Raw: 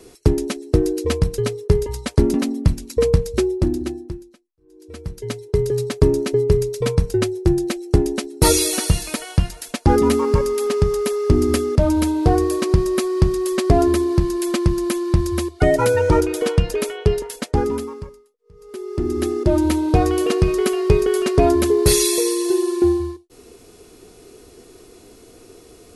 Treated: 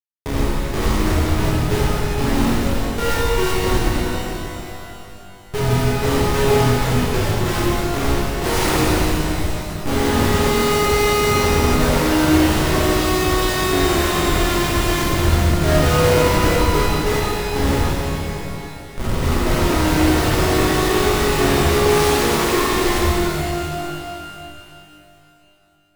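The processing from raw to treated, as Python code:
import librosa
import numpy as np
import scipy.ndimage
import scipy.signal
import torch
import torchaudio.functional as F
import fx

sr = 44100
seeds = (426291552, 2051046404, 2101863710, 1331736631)

y = fx.hpss(x, sr, part='percussive', gain_db=-14)
y = fx.schmitt(y, sr, flips_db=-19.5)
y = fx.rev_shimmer(y, sr, seeds[0], rt60_s=2.9, semitones=12, shimmer_db=-8, drr_db=-8.0)
y = y * 10.0 ** (-3.0 / 20.0)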